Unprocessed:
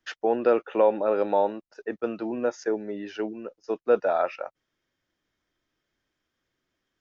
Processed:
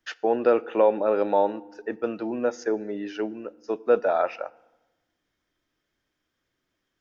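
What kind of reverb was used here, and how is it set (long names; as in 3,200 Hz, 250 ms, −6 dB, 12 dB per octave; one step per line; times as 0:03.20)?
feedback delay network reverb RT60 1.1 s, low-frequency decay 1.4×, high-frequency decay 0.7×, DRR 19 dB
level +1 dB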